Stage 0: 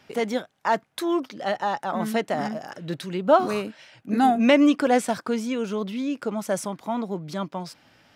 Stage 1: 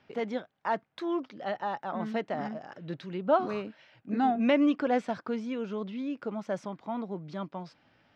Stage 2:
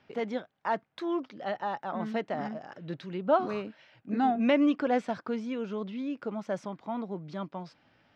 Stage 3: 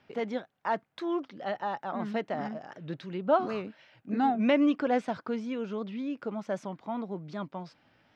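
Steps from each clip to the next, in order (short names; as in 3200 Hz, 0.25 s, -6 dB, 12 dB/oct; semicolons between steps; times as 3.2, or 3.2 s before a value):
air absorption 190 m; gain -6.5 dB
nothing audible
record warp 78 rpm, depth 100 cents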